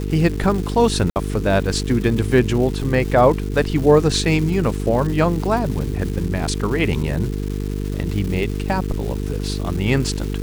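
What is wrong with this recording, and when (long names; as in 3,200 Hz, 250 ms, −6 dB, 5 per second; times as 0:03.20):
mains buzz 50 Hz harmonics 9 −24 dBFS
surface crackle 560 per second −28 dBFS
0:01.10–0:01.16: drop-out 59 ms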